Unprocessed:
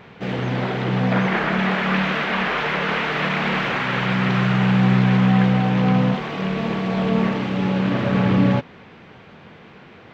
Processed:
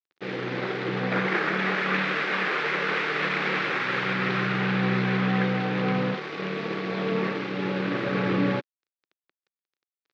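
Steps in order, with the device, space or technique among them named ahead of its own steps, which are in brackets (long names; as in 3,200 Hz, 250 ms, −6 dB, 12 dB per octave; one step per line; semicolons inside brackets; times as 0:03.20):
blown loudspeaker (dead-zone distortion −34.5 dBFS; loudspeaker in its box 230–4,800 Hz, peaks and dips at 230 Hz −10 dB, 350 Hz +3 dB, 670 Hz −9 dB, 950 Hz −7 dB, 3,000 Hz −5 dB)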